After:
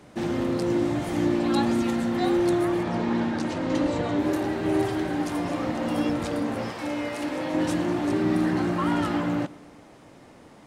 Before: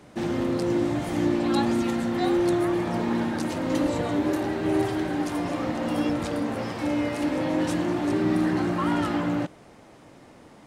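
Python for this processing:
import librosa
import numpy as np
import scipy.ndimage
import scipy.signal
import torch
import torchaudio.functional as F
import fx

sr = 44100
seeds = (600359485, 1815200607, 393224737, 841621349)

y = fx.lowpass(x, sr, hz=6600.0, slope=12, at=(2.83, 4.19))
y = fx.low_shelf(y, sr, hz=320.0, db=-8.5, at=(6.7, 7.54))
y = fx.echo_feedback(y, sr, ms=120, feedback_pct=58, wet_db=-22.0)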